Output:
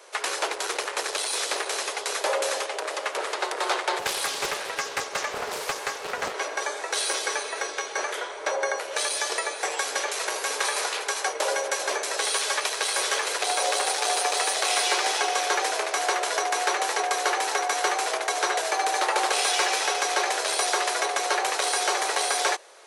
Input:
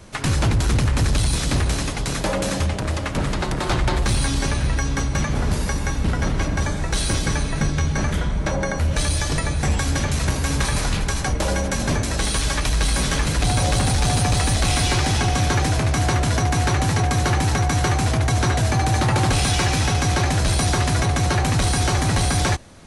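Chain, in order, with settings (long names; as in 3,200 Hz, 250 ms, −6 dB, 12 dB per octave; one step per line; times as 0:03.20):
elliptic high-pass filter 410 Hz, stop band 50 dB
0:03.99–0:06.34: highs frequency-modulated by the lows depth 0.36 ms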